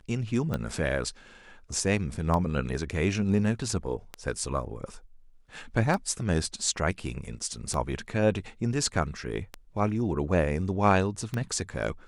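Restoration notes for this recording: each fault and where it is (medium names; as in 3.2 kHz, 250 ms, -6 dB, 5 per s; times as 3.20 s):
tick 33 1/3 rpm -17 dBFS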